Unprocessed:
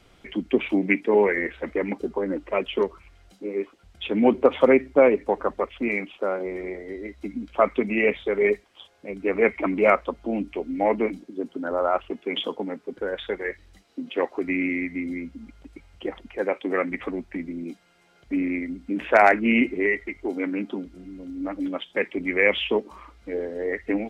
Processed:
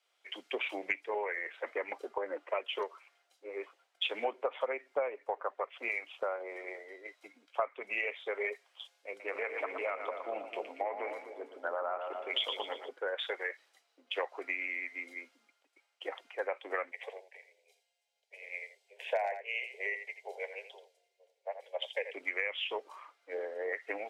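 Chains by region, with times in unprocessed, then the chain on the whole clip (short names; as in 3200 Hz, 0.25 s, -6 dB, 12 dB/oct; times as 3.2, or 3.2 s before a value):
9.08–12.89 de-hum 56.98 Hz, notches 9 + compressor, threshold -23 dBFS + split-band echo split 610 Hz, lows 0.256 s, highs 0.117 s, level -7 dB
16.91–22.14 steep high-pass 410 Hz 96 dB/oct + fixed phaser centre 530 Hz, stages 4 + echo 84 ms -10 dB
whole clip: HPF 550 Hz 24 dB/oct; compressor 12:1, threshold -32 dBFS; three-band expander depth 70%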